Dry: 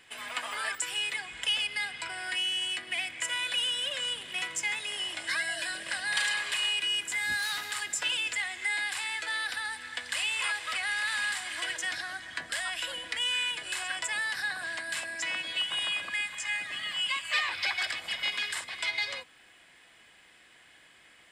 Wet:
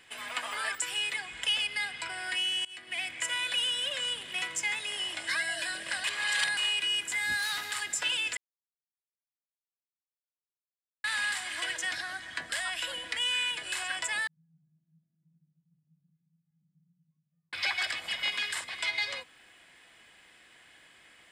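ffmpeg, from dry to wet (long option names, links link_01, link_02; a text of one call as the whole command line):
ffmpeg -i in.wav -filter_complex "[0:a]asettb=1/sr,asplit=3[link_01][link_02][link_03];[link_01]atrim=end=14.274[link_04];[link_02]atrim=start=14.27:end=17.53,asetpts=PTS-STARTPTS,afade=type=in:duration=0.004:curve=qsin,afade=type=out:start_time=3.256:duration=0.004:curve=qsin,asuperpass=centerf=160:order=4:qfactor=7.3[link_05];[link_03]atrim=start=17.526[link_06];[link_04][link_05]acrossfade=duration=0.004:curve1=hsin:curve2=qsin[link_07];[link_07][link_06]acrossfade=duration=0.004:curve1=qsin:curve2=hsin,asplit=6[link_08][link_09][link_10][link_11][link_12][link_13];[link_08]atrim=end=2.65,asetpts=PTS-STARTPTS,afade=type=out:start_time=2.646:duration=0.004:curve=hsin:silence=0.0749894[link_14];[link_09]atrim=start=2.65:end=6.042,asetpts=PTS-STARTPTS,afade=type=in:duration=0.43:silence=0.0749894[link_15];[link_10]atrim=start=6.038:end=6.572,asetpts=PTS-STARTPTS,areverse[link_16];[link_11]atrim=start=6.568:end=8.37,asetpts=PTS-STARTPTS,afade=type=out:start_time=1.798:duration=0.004:curve=hsin[link_17];[link_12]atrim=start=8.37:end=11.04,asetpts=PTS-STARTPTS,volume=0[link_18];[link_13]atrim=start=11.04,asetpts=PTS-STARTPTS,afade=type=in:duration=0.004:curve=hsin[link_19];[link_14][link_15]concat=n=2:v=0:a=1[link_20];[link_20][link_16]acrossfade=duration=0.004:curve1=hsin:curve2=hsin[link_21];[link_17][link_18][link_19]concat=n=3:v=0:a=1[link_22];[link_21][link_22]acrossfade=duration=0.004:curve1=hsin:curve2=hsin" out.wav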